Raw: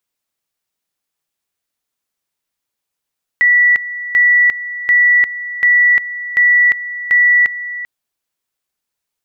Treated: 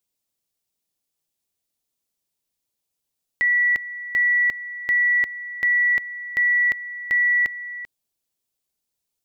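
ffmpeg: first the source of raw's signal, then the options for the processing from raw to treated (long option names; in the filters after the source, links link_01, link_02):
-f lavfi -i "aevalsrc='pow(10,(-7-14.5*gte(mod(t,0.74),0.35))/20)*sin(2*PI*1950*t)':duration=4.44:sample_rate=44100"
-af "equalizer=frequency=1500:width=0.72:gain=-10"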